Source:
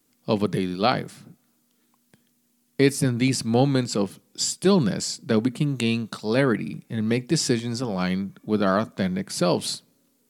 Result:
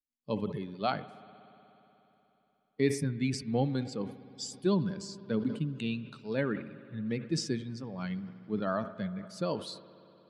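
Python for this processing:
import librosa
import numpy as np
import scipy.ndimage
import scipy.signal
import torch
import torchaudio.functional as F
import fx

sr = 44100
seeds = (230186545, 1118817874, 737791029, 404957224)

y = fx.bin_expand(x, sr, power=1.5)
y = scipy.signal.sosfilt(scipy.signal.butter(2, 5700.0, 'lowpass', fs=sr, output='sos'), y)
y = fx.peak_eq(y, sr, hz=3900.0, db=-2.5, octaves=2.3)
y = fx.rev_spring(y, sr, rt60_s=3.5, pass_ms=(60,), chirp_ms=40, drr_db=15.0)
y = fx.sustainer(y, sr, db_per_s=120.0)
y = y * 10.0 ** (-7.5 / 20.0)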